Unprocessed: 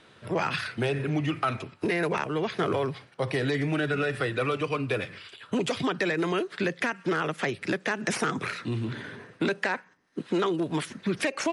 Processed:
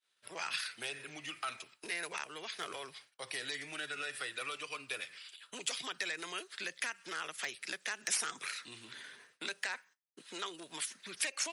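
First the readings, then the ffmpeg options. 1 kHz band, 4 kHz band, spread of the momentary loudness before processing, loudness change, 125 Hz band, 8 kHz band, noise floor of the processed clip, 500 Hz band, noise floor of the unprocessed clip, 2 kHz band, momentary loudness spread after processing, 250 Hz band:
−13.0 dB, −3.0 dB, 5 LU, −10.5 dB, −30.5 dB, +3.0 dB, −76 dBFS, −20.5 dB, −57 dBFS, −8.5 dB, 11 LU, −25.0 dB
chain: -af "asoftclip=type=hard:threshold=-15.5dB,agate=range=-33dB:threshold=-44dB:ratio=3:detection=peak,aderivative,volume=3dB"

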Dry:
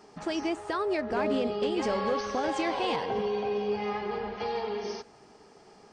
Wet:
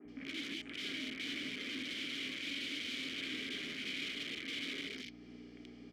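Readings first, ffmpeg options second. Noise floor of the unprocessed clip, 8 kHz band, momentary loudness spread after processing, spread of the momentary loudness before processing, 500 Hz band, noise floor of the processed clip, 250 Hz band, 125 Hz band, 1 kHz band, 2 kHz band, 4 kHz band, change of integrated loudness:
−56 dBFS, −3.5 dB, 10 LU, 6 LU, −25.0 dB, −54 dBFS, −11.5 dB, −12.5 dB, −29.0 dB, −2.0 dB, +2.0 dB, −9.5 dB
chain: -filter_complex "[0:a]acompressor=threshold=-50dB:ratio=2,equalizer=frequency=840:width_type=o:width=0.92:gain=11,flanger=delay=7.9:depth=5.8:regen=-72:speed=0.4:shape=triangular,aeval=exprs='val(0)+0.002*(sin(2*PI*60*n/s)+sin(2*PI*2*60*n/s)/2+sin(2*PI*3*60*n/s)/3+sin(2*PI*4*60*n/s)/4+sin(2*PI*5*60*n/s)/5)':channel_layout=same,aeval=exprs='(mod(100*val(0)+1,2)-1)/100':channel_layout=same,acrossover=split=230|2000[link_01][link_02][link_03];[link_01]adelay=50[link_04];[link_03]adelay=80[link_05];[link_04][link_02][link_05]amix=inputs=3:normalize=0,adynamicequalizer=threshold=0.001:dfrequency=4200:dqfactor=0.71:tfrequency=4200:tqfactor=0.71:attack=5:release=100:ratio=0.375:range=2:mode=boostabove:tftype=bell,asplit=3[link_06][link_07][link_08];[link_06]bandpass=frequency=270:width_type=q:width=8,volume=0dB[link_09];[link_07]bandpass=frequency=2290:width_type=q:width=8,volume=-6dB[link_10];[link_08]bandpass=frequency=3010:width_type=q:width=8,volume=-9dB[link_11];[link_09][link_10][link_11]amix=inputs=3:normalize=0,volume=17.5dB"

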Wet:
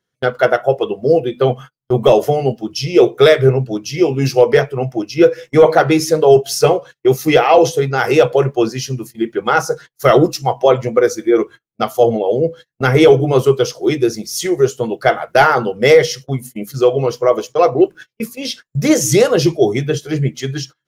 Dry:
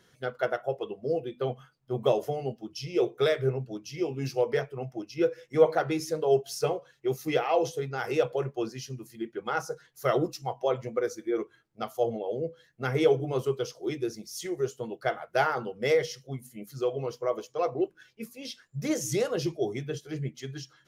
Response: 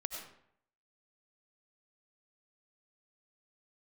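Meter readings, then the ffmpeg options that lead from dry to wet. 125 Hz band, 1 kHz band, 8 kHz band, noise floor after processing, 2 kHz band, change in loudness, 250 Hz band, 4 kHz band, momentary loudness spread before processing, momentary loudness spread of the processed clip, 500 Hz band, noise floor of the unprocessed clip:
+16.5 dB, +16.0 dB, +16.5 dB, −76 dBFS, +16.0 dB, +15.5 dB, +16.5 dB, +16.0 dB, 12 LU, 11 LU, +15.5 dB, −65 dBFS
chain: -af "agate=range=-31dB:threshold=-47dB:ratio=16:detection=peak,apsyclip=18dB,volume=-1.5dB"

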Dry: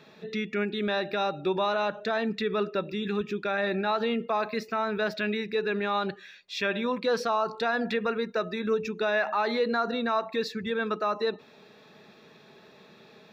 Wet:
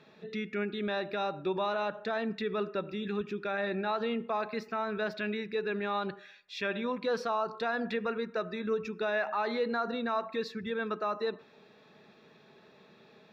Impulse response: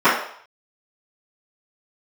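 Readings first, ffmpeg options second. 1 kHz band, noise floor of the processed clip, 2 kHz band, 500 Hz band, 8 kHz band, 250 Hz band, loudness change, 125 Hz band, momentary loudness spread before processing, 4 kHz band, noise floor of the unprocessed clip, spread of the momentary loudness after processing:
−4.5 dB, −60 dBFS, −5.0 dB, −4.5 dB, can't be measured, −4.5 dB, −4.5 dB, −4.5 dB, 4 LU, −6.5 dB, −55 dBFS, 5 LU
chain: -filter_complex "[0:a]highshelf=frequency=5800:gain=-8,asplit=2[link_01][link_02];[1:a]atrim=start_sample=2205,adelay=69[link_03];[link_02][link_03]afir=irnorm=-1:irlink=0,volume=-46dB[link_04];[link_01][link_04]amix=inputs=2:normalize=0,volume=-4.5dB"

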